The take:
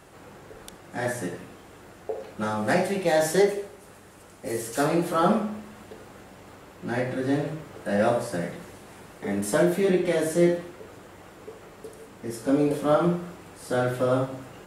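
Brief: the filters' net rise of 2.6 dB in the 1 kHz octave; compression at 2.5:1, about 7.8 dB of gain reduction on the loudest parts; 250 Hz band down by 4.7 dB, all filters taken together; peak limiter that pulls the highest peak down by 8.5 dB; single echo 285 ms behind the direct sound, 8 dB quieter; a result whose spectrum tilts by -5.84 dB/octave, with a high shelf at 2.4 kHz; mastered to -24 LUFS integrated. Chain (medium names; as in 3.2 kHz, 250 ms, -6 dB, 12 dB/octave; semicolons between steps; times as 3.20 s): peaking EQ 250 Hz -7.5 dB; peaking EQ 1 kHz +6 dB; treble shelf 2.4 kHz -8 dB; compression 2.5:1, threshold -28 dBFS; peak limiter -24.5 dBFS; delay 285 ms -8 dB; trim +11.5 dB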